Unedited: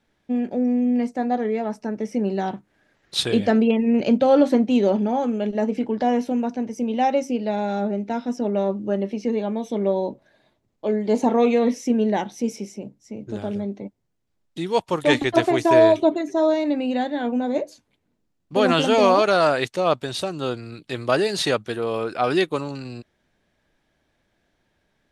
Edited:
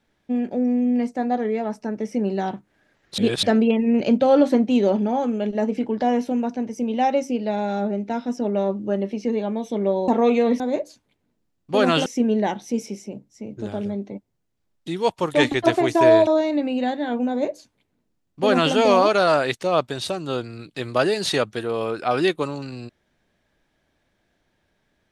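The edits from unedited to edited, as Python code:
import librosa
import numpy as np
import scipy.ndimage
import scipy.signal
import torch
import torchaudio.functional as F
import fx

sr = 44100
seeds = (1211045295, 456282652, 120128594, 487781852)

y = fx.edit(x, sr, fx.reverse_span(start_s=3.18, length_s=0.25),
    fx.cut(start_s=10.08, length_s=1.16),
    fx.cut(start_s=15.97, length_s=0.43),
    fx.duplicate(start_s=17.42, length_s=1.46, to_s=11.76), tone=tone)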